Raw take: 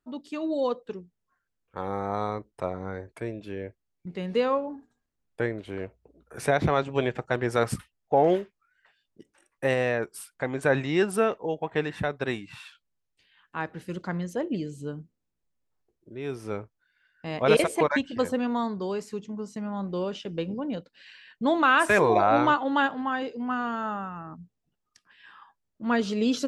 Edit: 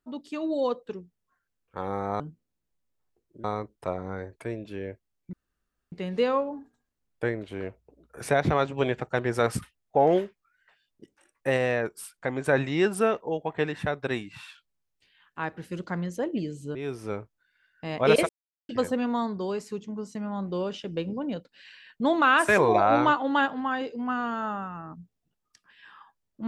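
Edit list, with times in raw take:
4.09 s: insert room tone 0.59 s
14.92–16.16 s: move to 2.20 s
17.70–18.10 s: mute

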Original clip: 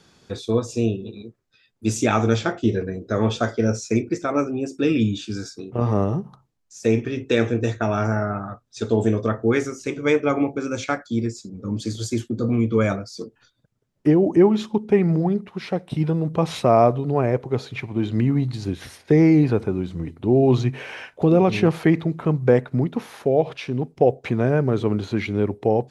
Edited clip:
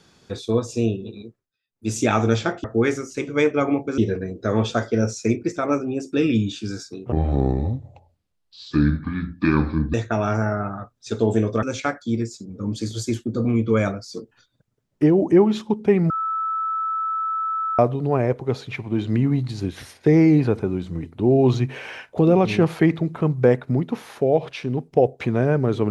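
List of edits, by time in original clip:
1.24–1.98 s: dip -22.5 dB, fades 0.29 s
5.78–7.64 s: speed 66%
9.33–10.67 s: move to 2.64 s
15.14–16.83 s: bleep 1.31 kHz -21.5 dBFS

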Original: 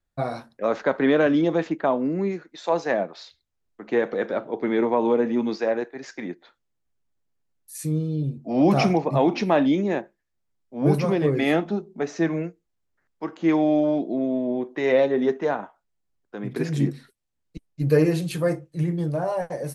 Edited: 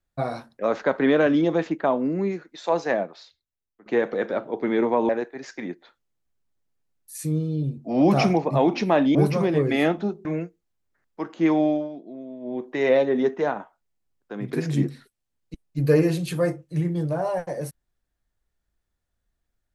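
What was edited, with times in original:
2.93–3.86 s: fade out quadratic, to -14 dB
5.09–5.69 s: delete
9.75–10.83 s: delete
11.93–12.28 s: delete
13.67–14.68 s: dip -13.5 dB, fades 0.25 s

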